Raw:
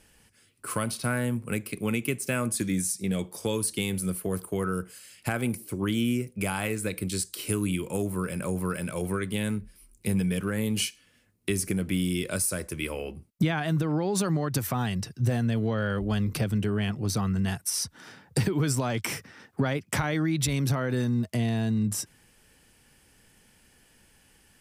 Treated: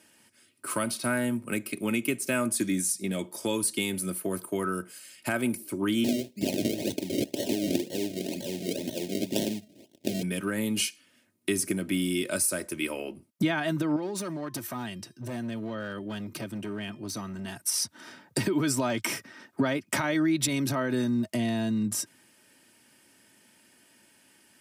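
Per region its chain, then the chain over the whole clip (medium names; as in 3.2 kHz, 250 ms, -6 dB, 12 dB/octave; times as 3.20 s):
6.04–10.23 s: frequency weighting D + decimation with a swept rate 35× 2 Hz + Butterworth band-stop 1.2 kHz, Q 0.59
13.96–17.56 s: hard clipper -21.5 dBFS + feedback comb 350 Hz, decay 0.38 s, harmonics odd, mix 50%
whole clip: high-pass 130 Hz 24 dB/octave; comb 3.2 ms, depth 54%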